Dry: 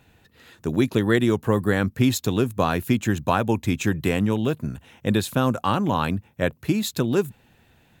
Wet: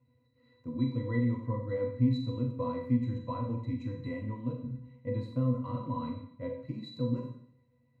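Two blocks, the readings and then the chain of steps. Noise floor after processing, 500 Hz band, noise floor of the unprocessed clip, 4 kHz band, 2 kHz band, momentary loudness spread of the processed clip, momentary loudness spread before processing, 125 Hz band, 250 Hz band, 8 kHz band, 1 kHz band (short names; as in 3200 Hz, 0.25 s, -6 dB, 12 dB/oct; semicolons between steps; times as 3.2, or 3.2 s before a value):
-70 dBFS, -12.5 dB, -60 dBFS, -19.0 dB, -21.0 dB, 11 LU, 7 LU, -7.0 dB, -10.0 dB, under -35 dB, -15.5 dB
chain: octave resonator B, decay 0.18 s; Schroeder reverb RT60 0.65 s, combs from 30 ms, DRR 2.5 dB; gain -2 dB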